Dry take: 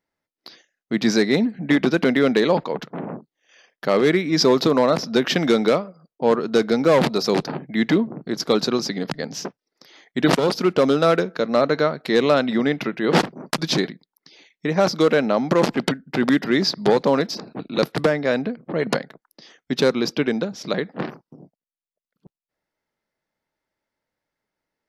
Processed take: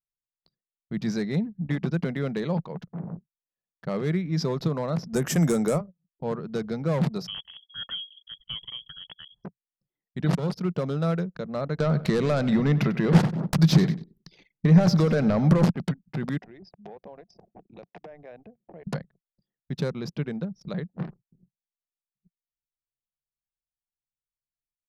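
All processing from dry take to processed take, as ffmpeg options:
-filter_complex "[0:a]asettb=1/sr,asplit=3[a][b][c];[a]atrim=end=5.134[d];[b]atrim=start=5.13:end=5.81,asetpts=PTS-STARTPTS,afade=t=in:d=0.004:c=qsin,afade=t=out:st=0.676:d=0.004:c=qsin,highshelf=f=5.8k:t=q:w=3:g=13.5,bandreject=f=190:w=5.3,acontrast=75[e];[c]atrim=start=5.806[f];[d][e]acrossfade=d=0.004:c1=hsin:c2=qsin[g];[g][f]acrossfade=d=0.004:c1=qsin:c2=hsin,asettb=1/sr,asplit=3[h][i][j];[h]atrim=end=7.274[k];[i]atrim=start=7.27:end=9.44,asetpts=PTS-STARTPTS,afade=t=in:d=0.004:c=qsin,afade=t=out:st=2.166:d=0.004:c=qsin,equalizer=f=1.1k:t=o:w=0.72:g=-14.5,lowpass=f=3k:t=q:w=0.5098,lowpass=f=3k:t=q:w=0.6013,lowpass=f=3k:t=q:w=0.9,lowpass=f=3k:t=q:w=2.563,afreqshift=-3500[l];[j]atrim=start=9.436[m];[k][l]acrossfade=d=0.004:c1=hsin:c2=qsin[n];[n][m]acrossfade=d=0.004:c1=qsin:c2=hsin,asettb=1/sr,asplit=3[o][p][q];[o]atrim=end=11.804[r];[p]atrim=start=11.8:end=15.7,asetpts=PTS-STARTPTS,afade=t=in:d=0.004:c=qsin,afade=t=out:st=3.896:d=0.004:c=qsin,acompressor=threshold=-23dB:ratio=2:attack=3.2:release=140:knee=1:detection=peak,aeval=exprs='0.501*sin(PI/2*3.16*val(0)/0.501)':c=same,aecho=1:1:95|190|285|380:0.158|0.0745|0.035|0.0165,atrim=end_sample=171990[s];[q]atrim=start=15.696[t];[r][s]acrossfade=d=0.004:c1=hsin:c2=qsin[u];[u][t]acrossfade=d=0.004:c1=qsin:c2=hsin,asettb=1/sr,asplit=3[v][w][x];[v]atrim=end=16.384[y];[w]atrim=start=16.38:end=18.87,asetpts=PTS-STARTPTS,afade=t=in:d=0.004:c=qsin,afade=t=out:st=2.486:d=0.004:c=qsin,acompressor=threshold=-30dB:ratio=4:attack=3.2:release=140:knee=1:detection=peak,highpass=f=240:w=0.5412,highpass=f=240:w=1.3066,equalizer=f=270:t=q:w=4:g=-4,equalizer=f=720:t=q:w=4:g=9,equalizer=f=1.3k:t=q:w=4:g=-7,equalizer=f=2.5k:t=q:w=4:g=5,equalizer=f=4.3k:t=q:w=4:g=-9,lowpass=f=6.9k:w=0.5412,lowpass=f=6.9k:w=1.3066[z];[x]atrim=start=18.866[aa];[y][z]acrossfade=d=0.004:c1=hsin:c2=qsin[ab];[ab][aa]acrossfade=d=0.004:c1=qsin:c2=hsin,lowshelf=f=140:g=-11,anlmdn=10,firequalizer=gain_entry='entry(170,0);entry(250,-19);entry(3100,-24);entry(8500,-21)':delay=0.05:min_phase=1,volume=7.5dB"

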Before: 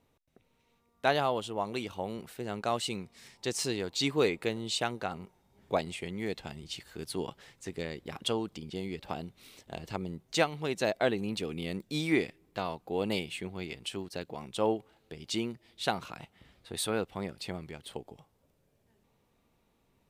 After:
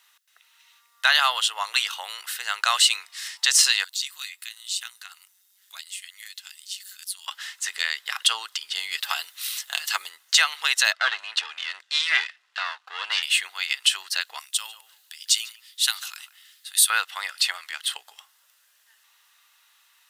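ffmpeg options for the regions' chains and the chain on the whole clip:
-filter_complex "[0:a]asettb=1/sr,asplit=3[a][b][c];[a]atrim=end=3.844[d];[b]atrim=start=3.84:end=7.27,asetpts=PTS-STARTPTS,afade=t=in:d=0.004:c=qsin,afade=t=out:st=3.426:d=0.004:c=qsin,aderivative,acompressor=threshold=-58dB:ratio=1.5:attack=3.2:release=140:knee=1:detection=peak,tremolo=f=190:d=0.621[e];[c]atrim=start=7.266[f];[d][e]acrossfade=d=0.004:c1=hsin:c2=qsin[g];[g][f]acrossfade=d=0.004:c1=qsin:c2=hsin,asettb=1/sr,asplit=3[h][i][j];[h]atrim=end=8.914[k];[i]atrim=start=8.91:end=10.09,asetpts=PTS-STARTPTS,afade=t=in:d=0.004:c=qsin,afade=t=out:st=1.176:d=0.004:c=qsin,highshelf=f=8k:g=10.5,aecho=1:1:7.1:0.39,atrim=end_sample=52038[l];[j]atrim=start=10.086[m];[k][l]acrossfade=d=0.004:c1=hsin:c2=qsin[n];[n][m]acrossfade=d=0.004:c1=qsin:c2=hsin,asettb=1/sr,asplit=3[o][p][q];[o]atrim=end=10.934[r];[p]atrim=start=10.93:end=13.23,asetpts=PTS-STARTPTS,afade=t=in:d=0.004:c=qsin,afade=t=out:st=2.296:d=0.004:c=qsin,aeval=exprs='if(lt(val(0),0),0.251*val(0),val(0))':c=same,lowpass=4.5k[s];[q]atrim=start=13.226[t];[r][s]acrossfade=d=0.004:c1=hsin:c2=qsin[u];[u][t]acrossfade=d=0.004:c1=qsin:c2=hsin,asettb=1/sr,asplit=3[v][w][x];[v]atrim=end=14.394[y];[w]atrim=start=14.39:end=16.9,asetpts=PTS-STARTPTS,afade=t=in:d=0.004:c=qsin,afade=t=out:st=2.506:d=0.004:c=qsin,aderivative,asplit=2[z][aa];[aa]adelay=146,lowpass=f=900:p=1,volume=-9dB,asplit=2[ab][ac];[ac]adelay=146,lowpass=f=900:p=1,volume=0.31,asplit=2[ad][ae];[ae]adelay=146,lowpass=f=900:p=1,volume=0.31,asplit=2[af][ag];[ag]adelay=146,lowpass=f=900:p=1,volume=0.31[ah];[z][ab][ad][af][ah]amix=inputs=5:normalize=0,atrim=end_sample=110691[ai];[x]atrim=start=16.896[aj];[y][ai]acrossfade=d=0.004:c1=hsin:c2=qsin[ak];[ak][aj]acrossfade=d=0.004:c1=qsin:c2=hsin,highpass=f=1.4k:w=0.5412,highpass=f=1.4k:w=1.3066,bandreject=f=2.3k:w=6.2,alimiter=level_in=25dB:limit=-1dB:release=50:level=0:latency=1,volume=-4.5dB"

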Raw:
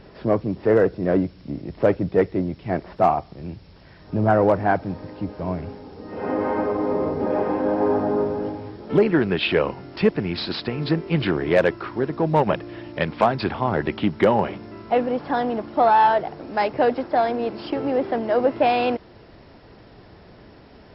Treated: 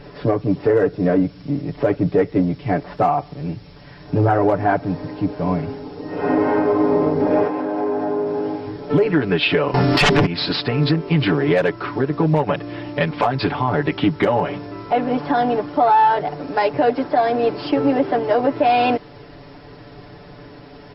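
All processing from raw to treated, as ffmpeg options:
-filter_complex "[0:a]asettb=1/sr,asplit=3[a][b][c];[a]atrim=end=7.474[d];[b]atrim=start=7.47:end=8.67,asetpts=PTS-STARTPTS,afade=t=in:d=0.004:c=qsin,afade=t=out:st=1.196:d=0.004:c=qsin,highpass=f=270:p=1,acompressor=threshold=-26dB:ratio=4:attack=3.2:release=140:knee=1:detection=peak[e];[c]atrim=start=8.666[f];[d][e]acrossfade=d=0.004:c1=hsin:c2=qsin[g];[g][f]acrossfade=d=0.004:c1=qsin:c2=hsin,asettb=1/sr,asplit=3[h][i][j];[h]atrim=end=9.744[k];[i]atrim=start=9.74:end=10.26,asetpts=PTS-STARTPTS,afade=t=in:d=0.004:c=qsin,afade=t=out:st=0.516:d=0.004:c=qsin,bandreject=f=50:t=h:w=6,bandreject=f=100:t=h:w=6,bandreject=f=150:t=h:w=6,bandreject=f=200:t=h:w=6,bandreject=f=250:t=h:w=6,bandreject=f=300:t=h:w=6,bandreject=f=350:t=h:w=6,bandreject=f=400:t=h:w=6,aeval=exprs='0.501*sin(PI/2*7.08*val(0)/0.501)':c=same[l];[j]atrim=start=10.256[m];[k][l]acrossfade=d=0.004:c1=hsin:c2=qsin[n];[n][m]acrossfade=d=0.004:c1=qsin:c2=hsin,aecho=1:1:6.9:0.95,alimiter=limit=-11.5dB:level=0:latency=1:release=179,volume=4dB"

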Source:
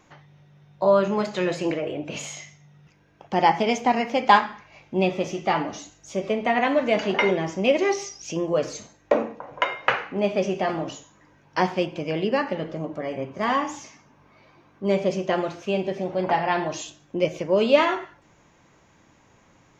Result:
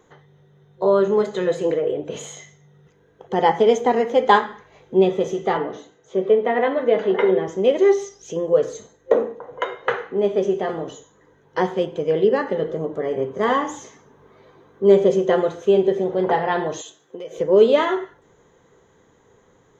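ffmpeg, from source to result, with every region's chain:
-filter_complex "[0:a]asettb=1/sr,asplit=3[a][b][c];[a]atrim=end=5.574[d];[b]atrim=start=5.57:end=7.48,asetpts=PTS-STARTPTS,afade=t=in:d=0.004:c=qsin,afade=t=out:st=1.906:d=0.004:c=qsin,highpass=110,lowpass=3.3k,bandreject=f=50:t=h:w=6,bandreject=f=100:t=h:w=6,bandreject=f=150:t=h:w=6,bandreject=f=200:t=h:w=6,bandreject=f=250:t=h:w=6,bandreject=f=300:t=h:w=6,bandreject=f=350:t=h:w=6,bandreject=f=400:t=h:w=6,asplit=2[e][f];[f]adelay=16,volume=-13.5dB[g];[e][g]amix=inputs=2:normalize=0,atrim=end_sample=84231[h];[c]atrim=start=7.476[i];[d][h]acrossfade=d=0.004:c1=hsin:c2=qsin[j];[j][i]acrossfade=d=0.004:c1=qsin:c2=hsin,asettb=1/sr,asplit=3[k][l][m];[k]atrim=end=16.814[n];[l]atrim=start=16.81:end=17.38,asetpts=PTS-STARTPTS,afade=t=in:d=0.004:c=qsin,afade=t=out:st=0.566:d=0.004:c=qsin,highpass=f=670:p=1,acompressor=threshold=-33dB:ratio=5:attack=3.2:release=140:knee=1:detection=peak[o];[m]atrim=start=17.376[p];[n][o]acrossfade=d=0.004:c1=hsin:c2=qsin[q];[q][p]acrossfade=d=0.004:c1=qsin:c2=hsin,superequalizer=7b=3.55:12b=0.355:14b=0.355,dynaudnorm=f=450:g=13:m=11.5dB,volume=-1dB"

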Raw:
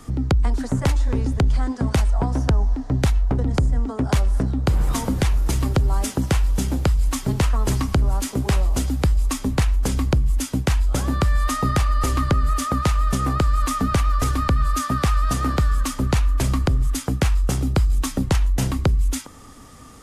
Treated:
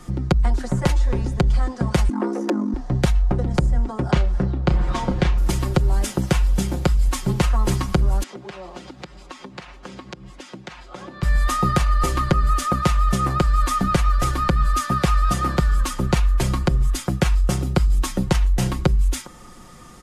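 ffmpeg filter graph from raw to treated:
-filter_complex "[0:a]asettb=1/sr,asplit=3[a][b][c];[a]atrim=end=2.094[d];[b]atrim=start=2.09:end=2.74,asetpts=PTS-STARTPTS,afade=t=in:d=0.004:c=qsin,afade=t=out:st=0.646:d=0.004:c=qsin,aeval=exprs='(tanh(6.31*val(0)+0.75)-tanh(0.75))/6.31':c=same,afreqshift=210[e];[c]atrim=start=2.736[f];[d][e]acrossfade=d=0.004:c1=hsin:c2=qsin[g];[g][f]acrossfade=d=0.004:c1=qsin:c2=hsin,asettb=1/sr,asplit=3[h][i][j];[h]atrim=end=4.114[k];[i]atrim=start=4.11:end=5.38,asetpts=PTS-STARTPTS,afade=t=in:d=0.004:c=qsin,afade=t=out:st=1.266:d=0.004:c=qsin,lowpass=4.3k,asplit=2[l][m];[m]adelay=33,volume=-10dB[n];[l][n]amix=inputs=2:normalize=0,atrim=end_sample=56007[o];[j]atrim=start=5.376[p];[k][o]acrossfade=d=0.004:c1=hsin:c2=qsin[q];[q][p]acrossfade=d=0.004:c1=qsin:c2=hsin,asettb=1/sr,asplit=3[r][s][t];[r]atrim=end=8.234[u];[s]atrim=start=8.23:end=11.23,asetpts=PTS-STARTPTS,afade=t=in:d=0.004:c=qsin,afade=t=out:st=2.996:d=0.004:c=qsin,highpass=230,lowpass=4.4k,acompressor=threshold=-34dB:ratio=5:attack=3.2:release=140:knee=1:detection=peak[v];[t]atrim=start=11.226[w];[u][v]acrossfade=d=0.004:c1=hsin:c2=qsin[x];[x][w]acrossfade=d=0.004:c1=qsin:c2=hsin,highshelf=f=7.6k:g=-4.5,aecho=1:1:5.6:0.67"

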